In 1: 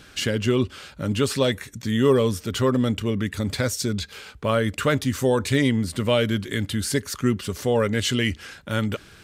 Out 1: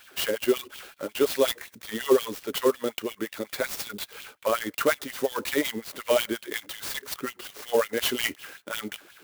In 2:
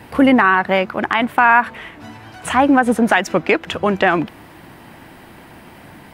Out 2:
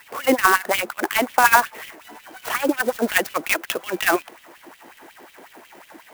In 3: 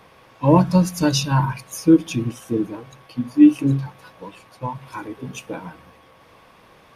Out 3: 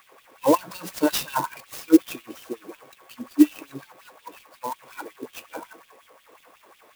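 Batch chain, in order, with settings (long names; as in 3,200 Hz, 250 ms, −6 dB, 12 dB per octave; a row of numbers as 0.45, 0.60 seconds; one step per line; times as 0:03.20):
auto-filter high-pass sine 5.5 Hz 330–3,400 Hz
converter with an unsteady clock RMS 0.038 ms
level −4.5 dB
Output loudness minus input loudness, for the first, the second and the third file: −4.5, −5.0, −4.0 LU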